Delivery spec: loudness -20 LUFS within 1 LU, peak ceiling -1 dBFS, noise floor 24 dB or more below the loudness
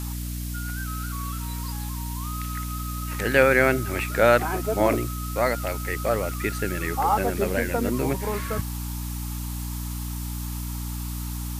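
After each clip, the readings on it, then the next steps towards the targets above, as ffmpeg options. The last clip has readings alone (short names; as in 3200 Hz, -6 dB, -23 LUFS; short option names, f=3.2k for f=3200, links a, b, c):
hum 60 Hz; harmonics up to 300 Hz; hum level -29 dBFS; noise floor -31 dBFS; noise floor target -50 dBFS; loudness -26.0 LUFS; peak -3.5 dBFS; loudness target -20.0 LUFS
-> -af "bandreject=f=60:t=h:w=4,bandreject=f=120:t=h:w=4,bandreject=f=180:t=h:w=4,bandreject=f=240:t=h:w=4,bandreject=f=300:t=h:w=4"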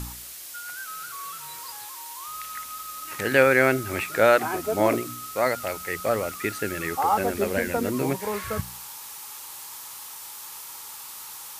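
hum none; noise floor -40 dBFS; noise floor target -50 dBFS
-> -af "afftdn=nr=10:nf=-40"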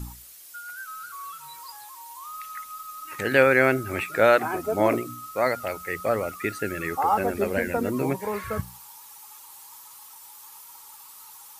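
noise floor -47 dBFS; noise floor target -49 dBFS
-> -af "afftdn=nr=6:nf=-47"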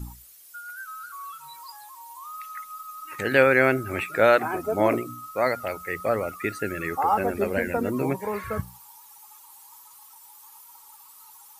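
noise floor -50 dBFS; loudness -24.0 LUFS; peak -4.0 dBFS; loudness target -20.0 LUFS
-> -af "volume=4dB,alimiter=limit=-1dB:level=0:latency=1"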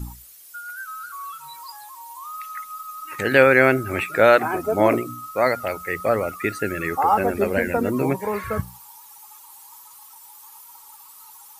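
loudness -20.5 LUFS; peak -1.0 dBFS; noise floor -46 dBFS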